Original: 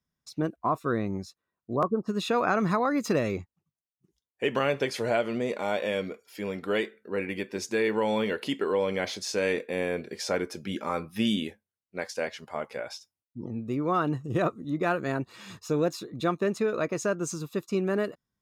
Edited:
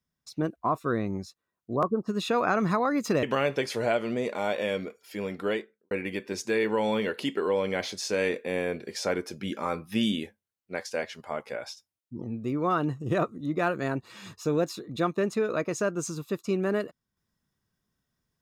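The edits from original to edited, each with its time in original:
3.23–4.47 cut
6.65–7.15 studio fade out

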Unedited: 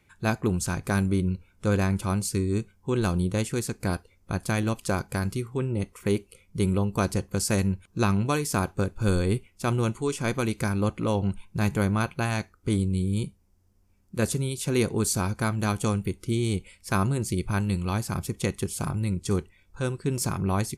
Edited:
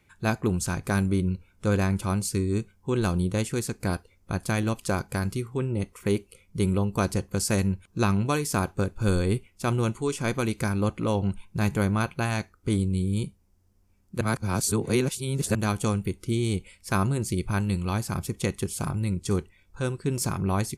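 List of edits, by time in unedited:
14.21–15.55 reverse

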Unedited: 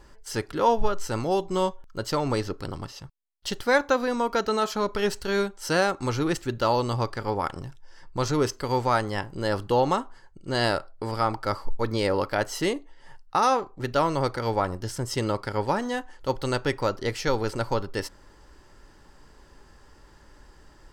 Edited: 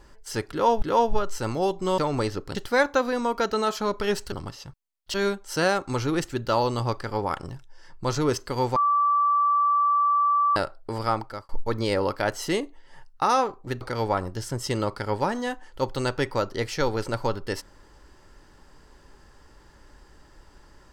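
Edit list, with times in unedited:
0.51–0.82 loop, 2 plays
1.67–2.11 cut
2.68–3.5 move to 5.27
8.89–10.69 bleep 1160 Hz -18 dBFS
11.24–11.62 fade out
13.94–14.28 cut

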